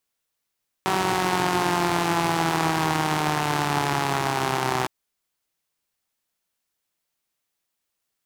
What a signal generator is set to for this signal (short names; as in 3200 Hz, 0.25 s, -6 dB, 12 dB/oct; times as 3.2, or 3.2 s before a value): four-cylinder engine model, changing speed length 4.01 s, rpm 5700, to 3800, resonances 160/340/790 Hz